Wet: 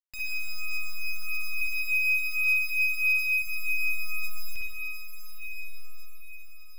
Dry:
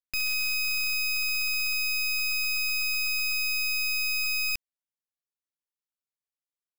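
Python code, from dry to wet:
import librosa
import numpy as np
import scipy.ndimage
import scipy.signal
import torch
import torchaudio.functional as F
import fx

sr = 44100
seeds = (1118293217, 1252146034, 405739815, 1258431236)

p1 = fx.highpass_res(x, sr, hz=2200.0, q=5.1, at=(1.61, 3.42))
p2 = p1 + fx.echo_diffused(p1, sr, ms=918, feedback_pct=50, wet_db=-6.0, dry=0)
p3 = fx.rev_spring(p2, sr, rt60_s=1.5, pass_ms=(51, 57), chirp_ms=40, drr_db=-3.0)
p4 = fx.comb_cascade(p3, sr, direction='falling', hz=0.57)
y = p4 * librosa.db_to_amplitude(-6.0)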